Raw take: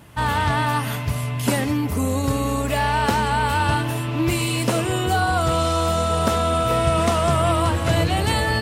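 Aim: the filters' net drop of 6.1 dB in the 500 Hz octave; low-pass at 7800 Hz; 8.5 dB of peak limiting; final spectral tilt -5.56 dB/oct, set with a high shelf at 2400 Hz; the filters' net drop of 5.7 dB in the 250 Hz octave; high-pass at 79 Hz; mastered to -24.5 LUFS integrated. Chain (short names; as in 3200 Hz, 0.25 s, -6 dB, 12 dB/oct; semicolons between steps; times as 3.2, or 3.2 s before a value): HPF 79 Hz; LPF 7800 Hz; bell 250 Hz -5 dB; bell 500 Hz -7.5 dB; high shelf 2400 Hz -6 dB; gain +3.5 dB; limiter -16 dBFS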